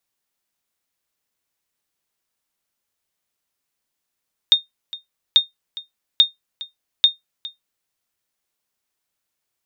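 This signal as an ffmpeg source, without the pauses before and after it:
-f lavfi -i "aevalsrc='0.668*(sin(2*PI*3670*mod(t,0.84))*exp(-6.91*mod(t,0.84)/0.15)+0.112*sin(2*PI*3670*max(mod(t,0.84)-0.41,0))*exp(-6.91*max(mod(t,0.84)-0.41,0)/0.15))':d=3.36:s=44100"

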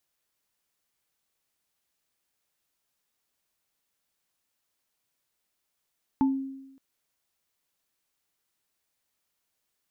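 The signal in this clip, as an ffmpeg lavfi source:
-f lavfi -i "aevalsrc='0.126*pow(10,-3*t/0.96)*sin(2*PI*269*t)+0.0562*pow(10,-3*t/0.2)*sin(2*PI*876*t)':d=0.57:s=44100"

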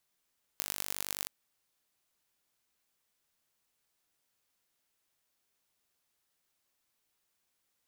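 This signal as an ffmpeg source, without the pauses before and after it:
-f lavfi -i "aevalsrc='0.562*eq(mod(n,895),0)*(0.5+0.5*eq(mod(n,4475),0))':d=0.67:s=44100"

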